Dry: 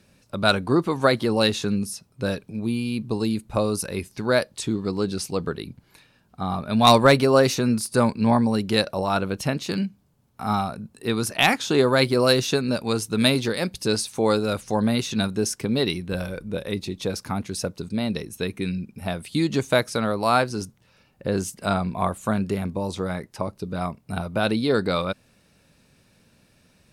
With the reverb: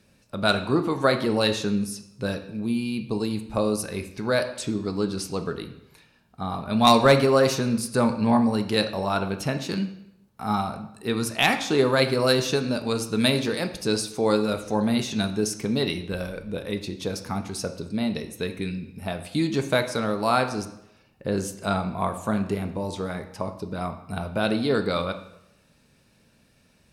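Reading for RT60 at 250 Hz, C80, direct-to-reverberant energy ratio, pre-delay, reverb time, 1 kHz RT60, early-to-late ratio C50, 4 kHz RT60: 0.80 s, 13.5 dB, 6.5 dB, 4 ms, 0.80 s, 0.80 s, 11.0 dB, 0.70 s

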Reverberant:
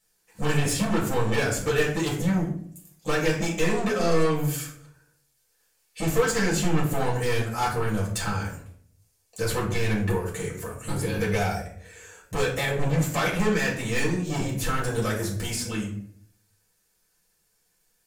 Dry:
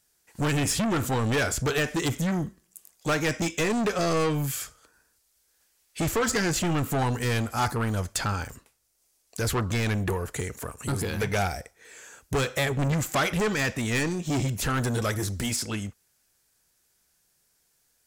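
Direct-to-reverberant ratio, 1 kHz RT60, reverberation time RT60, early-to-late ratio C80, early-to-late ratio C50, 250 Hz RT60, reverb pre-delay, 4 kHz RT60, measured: −5.0 dB, 0.50 s, 0.60 s, 10.5 dB, 7.0 dB, 0.75 s, 4 ms, 0.35 s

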